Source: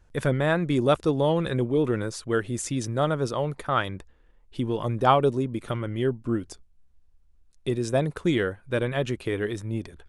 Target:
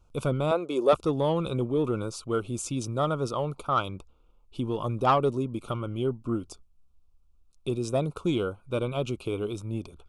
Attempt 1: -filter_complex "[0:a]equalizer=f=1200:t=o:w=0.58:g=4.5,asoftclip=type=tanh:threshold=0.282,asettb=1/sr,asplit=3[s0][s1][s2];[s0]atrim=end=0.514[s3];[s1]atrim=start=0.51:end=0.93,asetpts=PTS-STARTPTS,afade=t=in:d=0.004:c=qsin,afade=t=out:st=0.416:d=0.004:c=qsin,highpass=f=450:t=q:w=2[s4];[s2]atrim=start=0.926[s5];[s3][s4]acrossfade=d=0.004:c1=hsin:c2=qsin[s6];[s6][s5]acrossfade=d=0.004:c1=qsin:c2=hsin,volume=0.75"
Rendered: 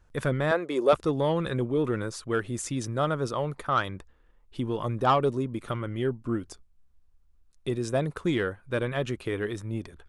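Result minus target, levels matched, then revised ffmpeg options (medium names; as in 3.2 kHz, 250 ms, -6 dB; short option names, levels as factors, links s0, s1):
2 kHz band +7.5 dB
-filter_complex "[0:a]asuperstop=centerf=1800:order=8:qfactor=2.1,equalizer=f=1200:t=o:w=0.58:g=4.5,asoftclip=type=tanh:threshold=0.282,asettb=1/sr,asplit=3[s0][s1][s2];[s0]atrim=end=0.514[s3];[s1]atrim=start=0.51:end=0.93,asetpts=PTS-STARTPTS,afade=t=in:d=0.004:c=qsin,afade=t=out:st=0.416:d=0.004:c=qsin,highpass=f=450:t=q:w=2[s4];[s2]atrim=start=0.926[s5];[s3][s4]acrossfade=d=0.004:c1=hsin:c2=qsin[s6];[s6][s5]acrossfade=d=0.004:c1=qsin:c2=hsin,volume=0.75"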